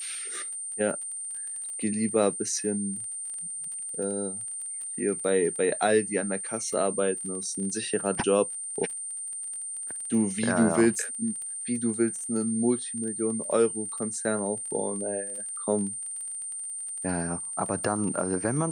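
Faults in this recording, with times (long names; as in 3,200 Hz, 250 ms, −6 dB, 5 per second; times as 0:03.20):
surface crackle 24 per second −36 dBFS
whistle 8,900 Hz −33 dBFS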